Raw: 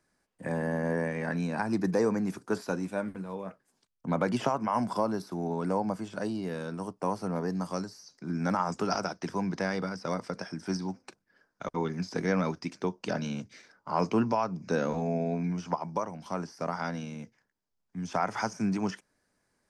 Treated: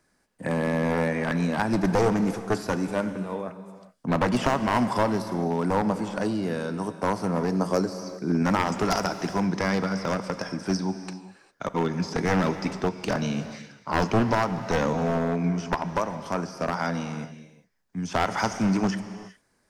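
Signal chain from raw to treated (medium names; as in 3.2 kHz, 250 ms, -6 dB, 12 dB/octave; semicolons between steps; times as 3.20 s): one-sided wavefolder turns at -25 dBFS; 7.52–8.43 s: peaking EQ 430 Hz +9 dB 1.1 oct; gated-style reverb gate 430 ms flat, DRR 10 dB; trim +6 dB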